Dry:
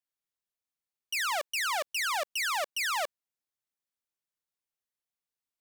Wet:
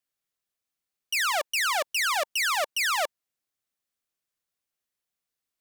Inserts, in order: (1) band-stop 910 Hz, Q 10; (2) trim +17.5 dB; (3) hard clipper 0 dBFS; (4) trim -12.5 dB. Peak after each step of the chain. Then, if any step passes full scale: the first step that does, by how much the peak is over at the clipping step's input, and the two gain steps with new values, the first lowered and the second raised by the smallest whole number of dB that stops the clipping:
-23.0 dBFS, -5.5 dBFS, -5.5 dBFS, -18.0 dBFS; nothing clips

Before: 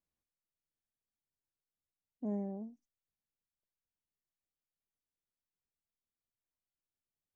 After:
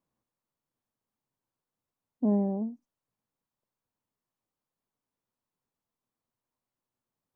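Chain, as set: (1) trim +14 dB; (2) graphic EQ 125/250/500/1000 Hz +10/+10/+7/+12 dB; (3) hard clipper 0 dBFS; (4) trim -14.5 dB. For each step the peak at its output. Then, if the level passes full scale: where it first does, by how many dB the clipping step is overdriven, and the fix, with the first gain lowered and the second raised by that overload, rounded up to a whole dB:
-14.0 dBFS, -1.5 dBFS, -1.5 dBFS, -16.0 dBFS; nothing clips

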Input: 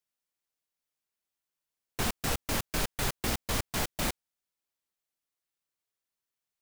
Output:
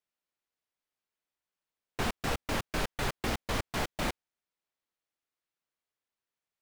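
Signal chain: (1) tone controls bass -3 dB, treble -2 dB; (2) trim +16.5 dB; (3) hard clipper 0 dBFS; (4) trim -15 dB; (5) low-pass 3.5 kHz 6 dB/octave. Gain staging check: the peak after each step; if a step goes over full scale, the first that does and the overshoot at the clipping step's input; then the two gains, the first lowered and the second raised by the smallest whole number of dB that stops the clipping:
-18.5 dBFS, -2.0 dBFS, -2.0 dBFS, -17.0 dBFS, -18.5 dBFS; nothing clips

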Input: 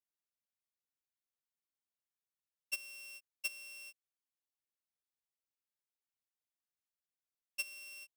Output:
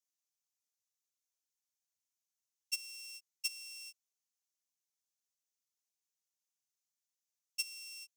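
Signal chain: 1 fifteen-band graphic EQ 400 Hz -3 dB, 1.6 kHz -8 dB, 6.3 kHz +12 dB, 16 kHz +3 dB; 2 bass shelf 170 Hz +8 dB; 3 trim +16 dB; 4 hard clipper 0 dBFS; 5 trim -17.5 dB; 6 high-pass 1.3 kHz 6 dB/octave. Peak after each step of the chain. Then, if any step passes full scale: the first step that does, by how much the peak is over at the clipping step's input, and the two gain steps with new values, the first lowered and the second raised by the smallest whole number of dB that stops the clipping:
-20.5 dBFS, -20.5 dBFS, -4.5 dBFS, -4.5 dBFS, -22.0 dBFS, -21.5 dBFS; nothing clips

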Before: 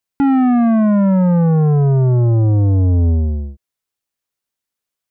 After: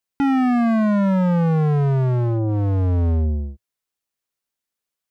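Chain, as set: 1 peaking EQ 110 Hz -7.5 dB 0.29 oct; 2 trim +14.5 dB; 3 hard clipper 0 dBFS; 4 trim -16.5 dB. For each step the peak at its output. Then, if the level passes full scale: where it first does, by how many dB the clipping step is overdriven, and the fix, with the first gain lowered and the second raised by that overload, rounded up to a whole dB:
-10.0 dBFS, +4.5 dBFS, 0.0 dBFS, -16.5 dBFS; step 2, 4.5 dB; step 2 +9.5 dB, step 4 -11.5 dB

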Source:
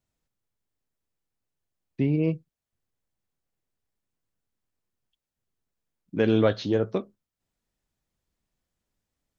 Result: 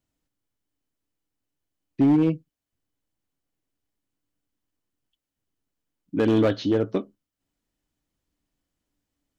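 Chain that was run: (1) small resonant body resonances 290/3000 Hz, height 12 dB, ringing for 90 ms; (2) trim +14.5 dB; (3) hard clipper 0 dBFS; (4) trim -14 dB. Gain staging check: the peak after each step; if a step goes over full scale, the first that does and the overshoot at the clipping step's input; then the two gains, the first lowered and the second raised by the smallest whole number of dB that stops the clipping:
-9.0 dBFS, +5.5 dBFS, 0.0 dBFS, -14.0 dBFS; step 2, 5.5 dB; step 2 +8.5 dB, step 4 -8 dB

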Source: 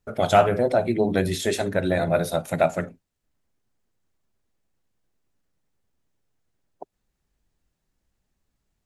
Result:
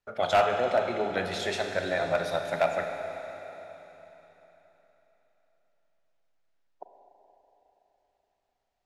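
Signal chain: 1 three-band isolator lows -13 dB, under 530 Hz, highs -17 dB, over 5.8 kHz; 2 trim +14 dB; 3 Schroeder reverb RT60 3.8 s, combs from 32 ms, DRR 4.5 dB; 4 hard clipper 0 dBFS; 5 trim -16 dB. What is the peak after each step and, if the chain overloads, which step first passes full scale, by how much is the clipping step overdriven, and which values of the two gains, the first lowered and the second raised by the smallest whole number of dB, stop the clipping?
-5.5 dBFS, +8.5 dBFS, +8.0 dBFS, 0.0 dBFS, -16.0 dBFS; step 2, 8.0 dB; step 2 +6 dB, step 5 -8 dB

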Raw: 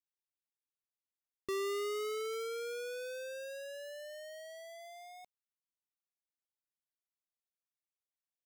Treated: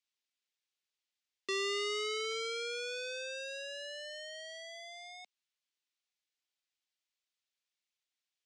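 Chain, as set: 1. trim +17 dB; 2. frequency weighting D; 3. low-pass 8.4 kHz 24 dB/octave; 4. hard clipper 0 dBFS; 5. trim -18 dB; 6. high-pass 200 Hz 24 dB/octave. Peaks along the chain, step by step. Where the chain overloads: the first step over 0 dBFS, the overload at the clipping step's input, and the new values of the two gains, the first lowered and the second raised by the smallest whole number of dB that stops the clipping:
-17.5 dBFS, -4.5 dBFS, -4.5 dBFS, -4.5 dBFS, -22.5 dBFS, -22.0 dBFS; nothing clips

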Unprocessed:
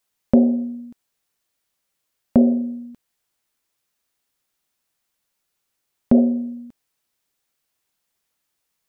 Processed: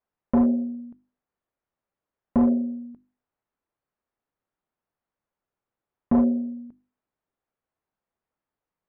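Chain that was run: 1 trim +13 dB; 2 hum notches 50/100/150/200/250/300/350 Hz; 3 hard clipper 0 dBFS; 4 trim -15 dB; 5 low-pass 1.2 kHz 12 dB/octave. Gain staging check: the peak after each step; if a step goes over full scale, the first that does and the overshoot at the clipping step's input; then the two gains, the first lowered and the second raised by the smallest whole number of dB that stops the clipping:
+9.5 dBFS, +8.5 dBFS, 0.0 dBFS, -15.0 dBFS, -14.5 dBFS; step 1, 8.5 dB; step 1 +4 dB, step 4 -6 dB

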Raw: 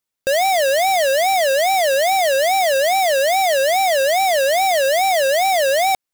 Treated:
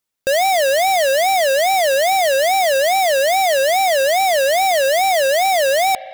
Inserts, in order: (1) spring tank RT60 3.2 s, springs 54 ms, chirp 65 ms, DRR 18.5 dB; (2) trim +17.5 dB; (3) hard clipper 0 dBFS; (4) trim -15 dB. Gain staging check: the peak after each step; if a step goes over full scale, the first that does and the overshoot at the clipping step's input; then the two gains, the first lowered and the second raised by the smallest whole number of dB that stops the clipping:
-13.0 dBFS, +4.5 dBFS, 0.0 dBFS, -15.0 dBFS; step 2, 4.5 dB; step 2 +12.5 dB, step 4 -10 dB

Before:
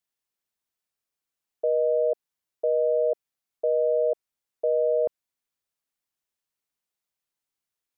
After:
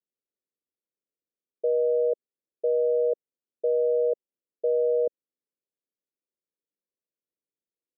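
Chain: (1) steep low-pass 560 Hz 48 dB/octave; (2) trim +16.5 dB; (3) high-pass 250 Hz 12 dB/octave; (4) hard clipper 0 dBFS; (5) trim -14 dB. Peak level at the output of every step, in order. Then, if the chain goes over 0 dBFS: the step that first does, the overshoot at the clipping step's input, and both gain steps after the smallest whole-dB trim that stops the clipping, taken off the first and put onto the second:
-19.5 dBFS, -3.0 dBFS, -3.5 dBFS, -3.5 dBFS, -17.5 dBFS; nothing clips

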